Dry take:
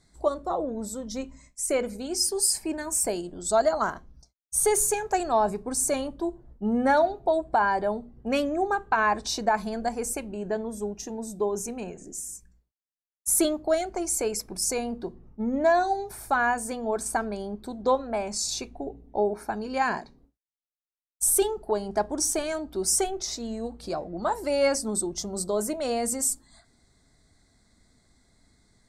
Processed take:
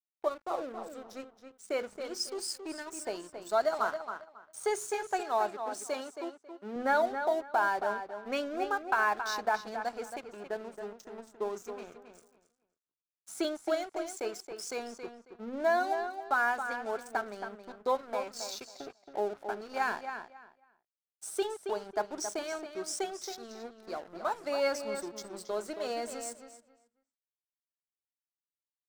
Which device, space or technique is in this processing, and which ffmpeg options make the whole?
pocket radio on a weak battery: -filter_complex "[0:a]highpass=310,lowpass=4500,aeval=exprs='sgn(val(0))*max(abs(val(0))-0.00668,0)':channel_layout=same,equalizer=frequency=1400:width_type=o:width=0.38:gain=6,asettb=1/sr,asplit=3[link_01][link_02][link_03];[link_01]atrim=end=5.214[link_04];[link_02]atrim=start=5.21:end=6.76,asetpts=PTS-STARTPTS,afade=type=in:duration=0.004:curve=qsin,afade=type=out:start_time=1.546:duration=0.004:curve=qsin,highpass=frequency=240:poles=1[link_05];[link_03]atrim=start=6.756[link_06];[link_04][link_05]acrossfade=duration=0.004:curve1=hsin:curve2=qsin[link_07];[link_07][link_06]acrossfade=duration=0.004:curve1=qsin:curve2=hsin,asplit=2[link_08][link_09];[link_09]adelay=273,lowpass=frequency=4400:poles=1,volume=-8dB,asplit=2[link_10][link_11];[link_11]adelay=273,lowpass=frequency=4400:poles=1,volume=0.21,asplit=2[link_12][link_13];[link_13]adelay=273,lowpass=frequency=4400:poles=1,volume=0.21[link_14];[link_08][link_10][link_12][link_14]amix=inputs=4:normalize=0,adynamicequalizer=threshold=0.00562:dfrequency=3700:dqfactor=0.7:tfrequency=3700:tqfactor=0.7:attack=5:release=100:ratio=0.375:range=2.5:mode=boostabove:tftype=highshelf,volume=-6dB"

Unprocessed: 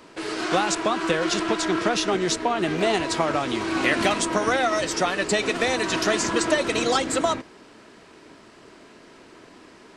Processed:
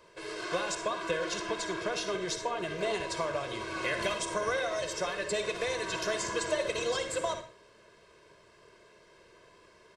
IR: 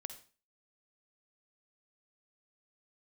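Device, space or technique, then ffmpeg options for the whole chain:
microphone above a desk: -filter_complex "[0:a]aecho=1:1:1.9:0.87[link_01];[1:a]atrim=start_sample=2205[link_02];[link_01][link_02]afir=irnorm=-1:irlink=0,volume=-8.5dB"

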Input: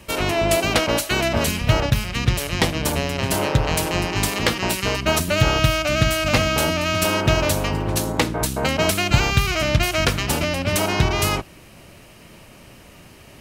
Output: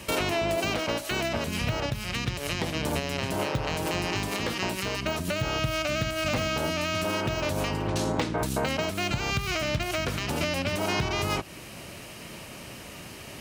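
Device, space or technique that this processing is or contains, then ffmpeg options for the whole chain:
broadcast voice chain: -filter_complex "[0:a]asettb=1/sr,asplit=3[link_01][link_02][link_03];[link_01]atrim=end=7.874[link_04];[link_02]atrim=start=7.87:end=8.38,asetpts=PTS-STARTPTS,afade=type=in:duration=0.004:curve=qsin,afade=type=out:start_time=0.506:duration=0.004:curve=qsin,lowpass=6300[link_05];[link_03]atrim=start=8.376[link_06];[link_04][link_05]acrossfade=duration=0.004:curve1=hsin:curve2=qsin[link_07];[link_07][link_06]acrossfade=duration=0.004:curve1=qsin:curve2=hsin,highpass=frequency=85:poles=1,deesser=0.6,acompressor=threshold=-27dB:ratio=4,equalizer=frequency=6000:width_type=o:width=2.6:gain=3,alimiter=limit=-18.5dB:level=0:latency=1:release=397,volume=3dB"

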